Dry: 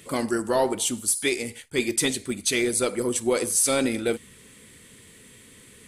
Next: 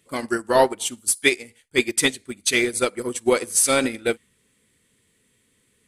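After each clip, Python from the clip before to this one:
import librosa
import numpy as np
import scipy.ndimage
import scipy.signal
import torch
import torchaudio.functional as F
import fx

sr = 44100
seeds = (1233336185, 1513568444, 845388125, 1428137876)

y = fx.dynamic_eq(x, sr, hz=1800.0, q=0.76, threshold_db=-40.0, ratio=4.0, max_db=5)
y = fx.upward_expand(y, sr, threshold_db=-32.0, expansion=2.5)
y = y * 10.0 ** (6.0 / 20.0)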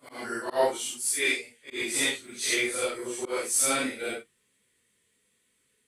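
y = fx.phase_scramble(x, sr, seeds[0], window_ms=200)
y = fx.low_shelf(y, sr, hz=320.0, db=-9.5)
y = fx.auto_swell(y, sr, attack_ms=135.0)
y = y * 10.0 ** (-5.0 / 20.0)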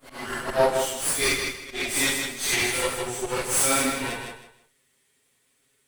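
y = fx.lower_of_two(x, sr, delay_ms=7.4)
y = fx.echo_feedback(y, sr, ms=158, feedback_pct=26, wet_db=-5.5)
y = y * 10.0 ** (4.0 / 20.0)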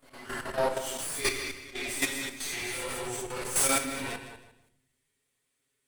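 y = fx.level_steps(x, sr, step_db=11)
y = fx.room_shoebox(y, sr, seeds[1], volume_m3=210.0, walls='mixed', distance_m=0.32)
y = y * 10.0 ** (-2.5 / 20.0)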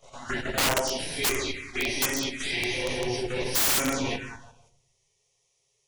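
y = fx.freq_compress(x, sr, knee_hz=2800.0, ratio=1.5)
y = fx.env_phaser(y, sr, low_hz=260.0, high_hz=4200.0, full_db=-27.0)
y = (np.mod(10.0 ** (27.0 / 20.0) * y + 1.0, 2.0) - 1.0) / 10.0 ** (27.0 / 20.0)
y = y * 10.0 ** (9.0 / 20.0)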